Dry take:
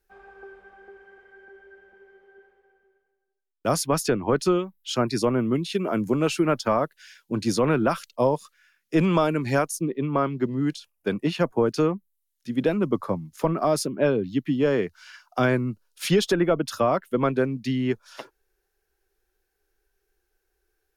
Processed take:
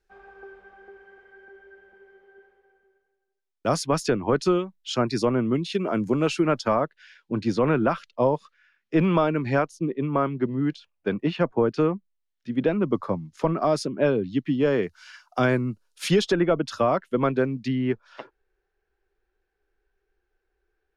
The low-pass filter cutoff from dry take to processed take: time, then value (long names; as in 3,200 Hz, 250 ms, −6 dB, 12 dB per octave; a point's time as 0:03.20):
6,700 Hz
from 0:06.75 3,200 Hz
from 0:12.88 5,600 Hz
from 0:14.83 10,000 Hz
from 0:16.22 5,600 Hz
from 0:17.68 2,700 Hz